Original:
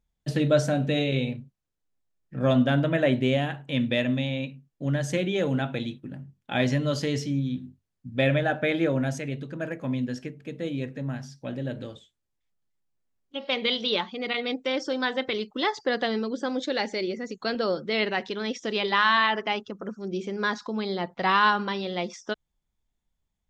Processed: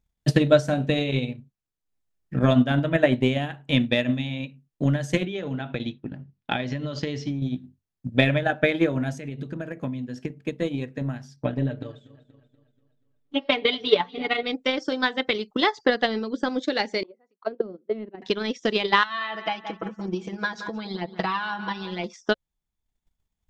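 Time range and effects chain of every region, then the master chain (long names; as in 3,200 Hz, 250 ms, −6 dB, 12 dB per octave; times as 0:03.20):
0:05.25–0:07.42: low-pass filter 5,700 Hz 24 dB per octave + downward compressor 10 to 1, threshold −26 dBFS
0:09.13–0:10.41: high-pass filter 160 Hz 6 dB per octave + low-shelf EQ 280 Hz +9 dB + downward compressor 5 to 1, threshold −30 dBFS
0:11.36–0:14.43: low-pass filter 2,300 Hz 6 dB per octave + comb filter 6.9 ms, depth 77% + feedback echo with a swinging delay time 240 ms, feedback 46%, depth 56 cents, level −17 dB
0:17.03–0:18.22: noise gate −29 dBFS, range −12 dB + mains-hum notches 50/100/150 Hz + envelope filter 260–1,300 Hz, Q 3, down, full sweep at −23 dBFS
0:19.03–0:22.04: feedback echo with a low-pass in the loop 174 ms, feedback 44%, low-pass 2,600 Hz, level −13 dB + downward compressor 2.5 to 1, threshold −33 dBFS + comb filter 6.1 ms, depth 95%
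whole clip: notch filter 540 Hz, Q 15; transient designer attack +10 dB, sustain −5 dB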